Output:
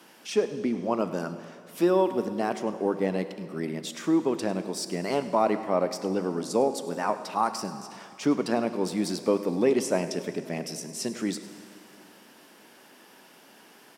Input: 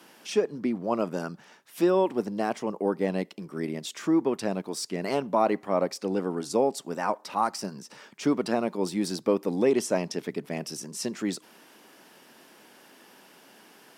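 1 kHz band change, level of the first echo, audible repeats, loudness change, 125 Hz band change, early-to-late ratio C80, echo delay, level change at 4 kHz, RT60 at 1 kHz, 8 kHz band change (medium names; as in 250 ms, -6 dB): +0.5 dB, -17.5 dB, 1, +0.5 dB, +0.5 dB, 11.0 dB, 103 ms, +0.5 dB, 2.6 s, +0.5 dB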